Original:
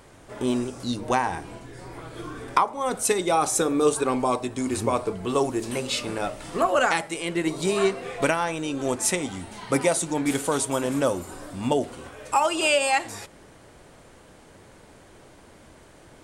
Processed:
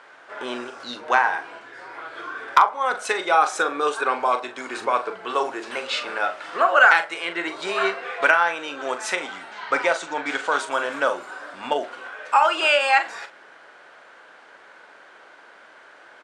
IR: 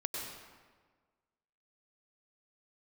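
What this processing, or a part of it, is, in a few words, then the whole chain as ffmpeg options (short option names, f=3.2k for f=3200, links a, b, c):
megaphone: -filter_complex "[0:a]asettb=1/sr,asplit=3[a][b][c];[a]atrim=end=9.514[d];[b]atrim=start=9.51:end=10.58,asetpts=PTS-STARTPTS,afade=t=in:d=0.004:c=qsin,afade=t=out:st=1.066:d=0.004:c=qsin,lowpass=f=8k:w=0.5412,lowpass=f=8k:w=1.3066[e];[c]atrim=start=10.576[f];[d][e]acrossfade=d=0.004:c1=hsin:c2=qsin[g];[g][f]acrossfade=d=0.004:c1=qsin:c2=hsin,highpass=680,lowpass=3.6k,equalizer=f=1.5k:t=o:w=0.41:g=9,asoftclip=type=hard:threshold=-8.5dB,asplit=2[h][i];[i]adelay=41,volume=-10dB[j];[h][j]amix=inputs=2:normalize=0,volume=4.5dB"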